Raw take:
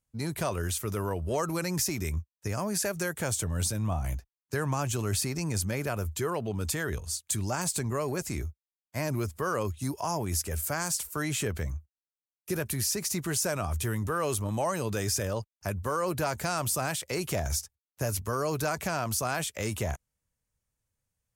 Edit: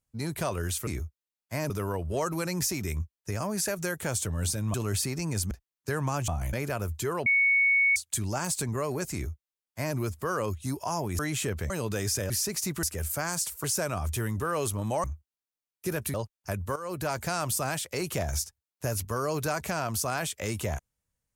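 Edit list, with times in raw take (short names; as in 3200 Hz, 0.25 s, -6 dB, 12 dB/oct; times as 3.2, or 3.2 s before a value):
3.91–4.16 swap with 4.93–5.7
6.43–7.13 bleep 2220 Hz -19.5 dBFS
8.3–9.13 copy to 0.87
10.36–11.17 move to 13.31
11.68–12.78 swap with 14.71–15.31
15.93–16.42 fade in equal-power, from -13.5 dB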